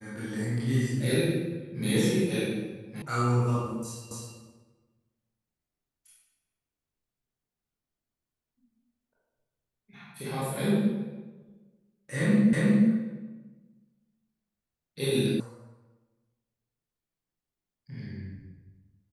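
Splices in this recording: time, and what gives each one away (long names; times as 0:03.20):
0:03.02: cut off before it has died away
0:04.11: the same again, the last 0.26 s
0:12.53: the same again, the last 0.36 s
0:15.40: cut off before it has died away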